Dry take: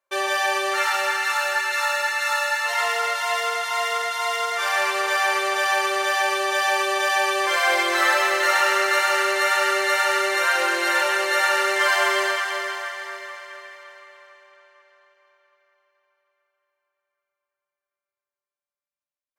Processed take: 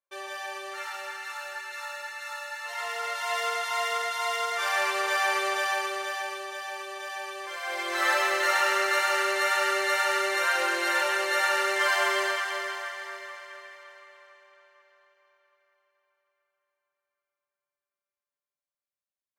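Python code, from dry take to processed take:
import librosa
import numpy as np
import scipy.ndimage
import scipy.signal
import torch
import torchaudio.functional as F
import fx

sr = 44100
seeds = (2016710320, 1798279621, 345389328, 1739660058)

y = fx.gain(x, sr, db=fx.line((2.49, -14.5), (3.44, -4.5), (5.48, -4.5), (6.63, -15.5), (7.6, -15.5), (8.1, -5.0)))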